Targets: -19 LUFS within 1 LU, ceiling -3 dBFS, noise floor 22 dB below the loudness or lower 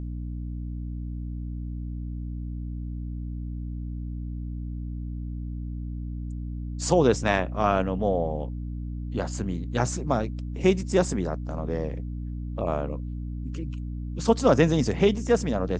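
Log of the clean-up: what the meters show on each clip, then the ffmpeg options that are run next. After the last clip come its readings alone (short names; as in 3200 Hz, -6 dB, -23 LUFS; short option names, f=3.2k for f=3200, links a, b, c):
hum 60 Hz; harmonics up to 300 Hz; hum level -30 dBFS; loudness -28.0 LUFS; peak -6.0 dBFS; loudness target -19.0 LUFS
-> -af "bandreject=f=60:t=h:w=4,bandreject=f=120:t=h:w=4,bandreject=f=180:t=h:w=4,bandreject=f=240:t=h:w=4,bandreject=f=300:t=h:w=4"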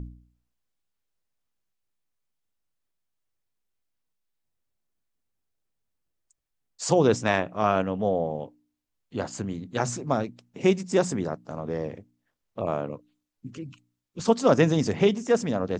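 hum none; loudness -26.0 LUFS; peak -7.0 dBFS; loudness target -19.0 LUFS
-> -af "volume=7dB,alimiter=limit=-3dB:level=0:latency=1"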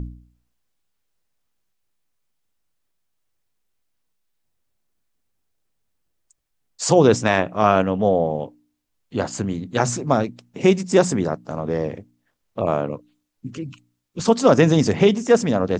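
loudness -19.5 LUFS; peak -3.0 dBFS; noise floor -73 dBFS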